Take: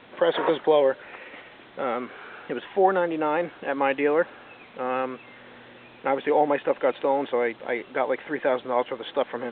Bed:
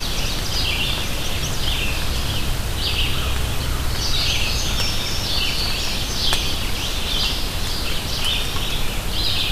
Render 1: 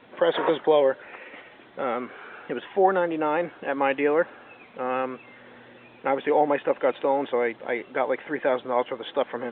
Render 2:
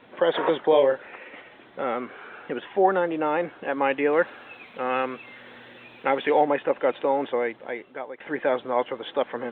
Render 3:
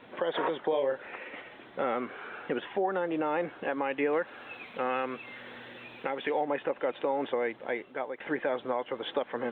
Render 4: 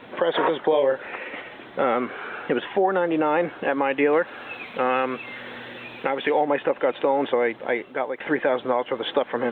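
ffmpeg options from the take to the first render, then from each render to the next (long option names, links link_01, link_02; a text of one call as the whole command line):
ffmpeg -i in.wav -af "afftdn=noise_reduction=6:noise_floor=-49" out.wav
ffmpeg -i in.wav -filter_complex "[0:a]asettb=1/sr,asplit=3[link_01][link_02][link_03];[link_01]atrim=end=0.694[link_04];[link_02]atrim=start=0.69:end=1.09,asetpts=PTS-STARTPTS,afade=type=in:duration=0.004:curve=qsin,afade=type=out:start_time=0.396:duration=0.004:curve=qsin,asplit=2[link_05][link_06];[link_06]adelay=36,volume=-6.5dB[link_07];[link_05][link_07]amix=inputs=2:normalize=0,atrim=end_sample=17640[link_08];[link_03]atrim=start=1.086[link_09];[link_04][link_08]acrossfade=duration=0.004:curve1=hsin:curve2=qsin[link_10];[link_10][link_09]acrossfade=duration=0.004:curve1=qsin:curve2=hsin,asettb=1/sr,asplit=3[link_11][link_12][link_13];[link_11]atrim=end=4.134[link_14];[link_12]atrim=start=4.13:end=6.45,asetpts=PTS-STARTPTS,afade=type=in:duration=0.004:curve=qsin,afade=type=out:start_time=2.316:duration=0.004:curve=qsin,highshelf=frequency=2300:gain=10.5[link_15];[link_13]atrim=start=6.446[link_16];[link_14][link_15]acrossfade=duration=0.004:curve1=hsin:curve2=qsin[link_17];[link_17][link_16]acrossfade=duration=0.004:curve1=qsin:curve2=hsin,asplit=2[link_18][link_19];[link_18]atrim=end=8.2,asetpts=PTS-STARTPTS,afade=type=out:start_time=7.26:duration=0.94:silence=0.158489[link_20];[link_19]atrim=start=8.2,asetpts=PTS-STARTPTS,afade=type=in:duration=0.004:curve=hsin:silence=0.158489[link_21];[link_20][link_21]concat=n=2:v=0:a=1" out.wav
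ffmpeg -i in.wav -af "acompressor=threshold=-22dB:ratio=4,alimiter=limit=-19dB:level=0:latency=1:release=354" out.wav
ffmpeg -i in.wav -af "volume=8.5dB" out.wav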